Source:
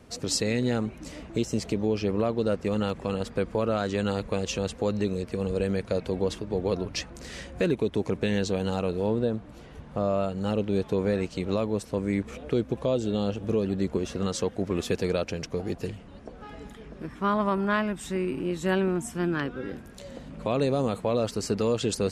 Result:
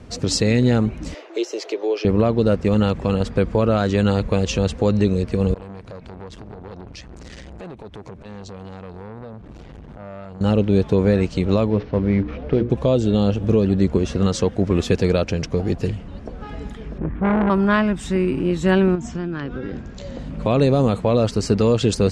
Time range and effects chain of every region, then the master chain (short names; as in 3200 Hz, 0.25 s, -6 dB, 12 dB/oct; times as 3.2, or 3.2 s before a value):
1.14–2.05 Chebyshev high-pass 350 Hz, order 5 + bell 8500 Hz -14 dB 0.34 oct
5.54–10.41 compressor 4:1, threshold -40 dBFS + core saturation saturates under 1600 Hz
11.7–12.7 CVSD 32 kbps + LPF 2400 Hz + notches 60/120/180/240/300/360/420/480/540 Hz
16.98–17.5 LPF 2800 Hz 24 dB/oct + tilt -2 dB/oct + core saturation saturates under 970 Hz
18.95–20.19 Chebyshev low-pass 7200 Hz, order 5 + compressor, threshold -32 dBFS
whole clip: LPF 7400 Hz 12 dB/oct; low shelf 160 Hz +9.5 dB; gain +6.5 dB